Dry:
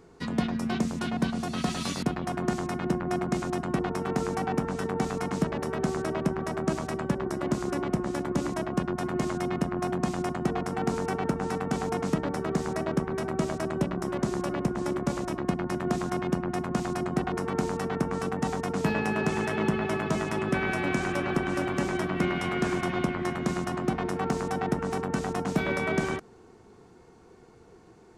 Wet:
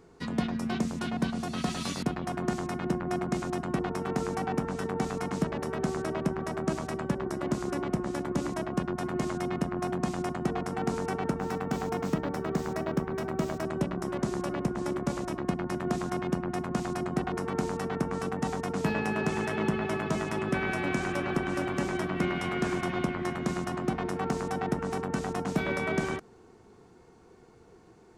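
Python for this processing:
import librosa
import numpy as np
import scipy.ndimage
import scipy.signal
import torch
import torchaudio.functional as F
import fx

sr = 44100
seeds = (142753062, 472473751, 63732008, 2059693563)

y = fx.resample_linear(x, sr, factor=2, at=(11.38, 13.65))
y = y * 10.0 ** (-2.0 / 20.0)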